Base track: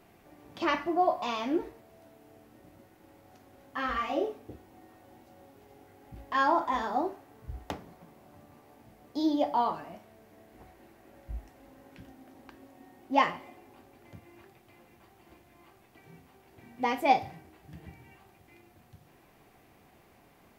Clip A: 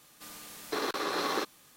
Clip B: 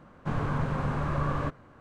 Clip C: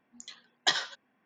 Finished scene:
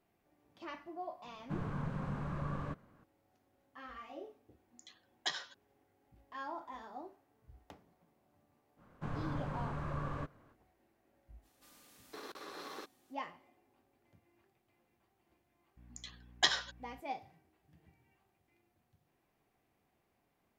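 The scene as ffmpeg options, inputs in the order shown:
-filter_complex "[2:a]asplit=2[a][b];[3:a]asplit=2[c][d];[0:a]volume=-18dB[e];[a]equalizer=f=190:w=3:g=8.5[f];[d]aeval=exprs='val(0)+0.002*(sin(2*PI*60*n/s)+sin(2*PI*2*60*n/s)/2+sin(2*PI*3*60*n/s)/3+sin(2*PI*4*60*n/s)/4+sin(2*PI*5*60*n/s)/5)':c=same[g];[f]atrim=end=1.8,asetpts=PTS-STARTPTS,volume=-12dB,afade=t=in:d=0.004:c=hsin,afade=t=out:st=1.796:d=0.004:c=hsin,adelay=1240[h];[c]atrim=end=1.25,asetpts=PTS-STARTPTS,volume=-11dB,afade=t=in:d=0.004:c=hsin,afade=t=out:st=1.246:d=0.004:c=hsin,adelay=4590[i];[b]atrim=end=1.8,asetpts=PTS-STARTPTS,volume=-10.5dB,afade=t=in:d=0.05,afade=t=out:st=1.75:d=0.05,adelay=8760[j];[1:a]atrim=end=1.76,asetpts=PTS-STARTPTS,volume=-16dB,afade=t=in:d=0.05,afade=t=out:st=1.71:d=0.05,adelay=11410[k];[g]atrim=end=1.25,asetpts=PTS-STARTPTS,volume=-3dB,afade=t=in:d=0.02,afade=t=out:st=1.23:d=0.02,adelay=15760[l];[e][h][i][j][k][l]amix=inputs=6:normalize=0"

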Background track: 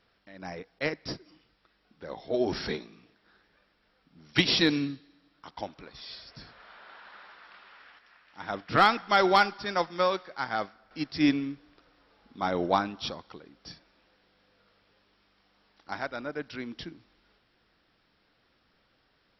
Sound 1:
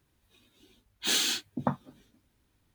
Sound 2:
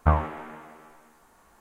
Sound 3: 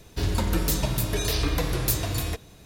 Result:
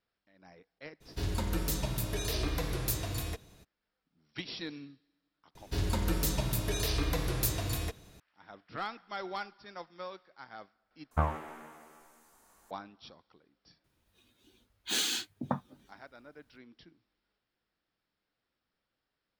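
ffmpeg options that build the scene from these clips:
-filter_complex "[3:a]asplit=2[a][b];[0:a]volume=-17dB[c];[2:a]bass=f=250:g=-2,treble=f=4k:g=9[d];[c]asplit=2[e][f];[e]atrim=end=11.114[g];[d]atrim=end=1.6,asetpts=PTS-STARTPTS,volume=-7dB[h];[f]atrim=start=12.706[i];[a]atrim=end=2.65,asetpts=PTS-STARTPTS,volume=-8dB,afade=t=in:d=0.02,afade=t=out:st=2.63:d=0.02,adelay=1000[j];[b]atrim=end=2.65,asetpts=PTS-STARTPTS,volume=-6dB,afade=t=in:d=0.004:c=hsin,afade=t=out:st=2.646:d=0.004:c=hsin,adelay=5550[k];[1:a]atrim=end=2.74,asetpts=PTS-STARTPTS,volume=-4dB,afade=t=in:d=0.004:c=hsin,afade=t=out:st=2.736:d=0.004:c=hsin,adelay=13840[l];[g][h]acrossfade=d=0.004:c1=hsin:c2=hsin[m];[m][i]acrossfade=d=0.004:c1=hsin:c2=hsin[n];[n][j][k][l]amix=inputs=4:normalize=0"

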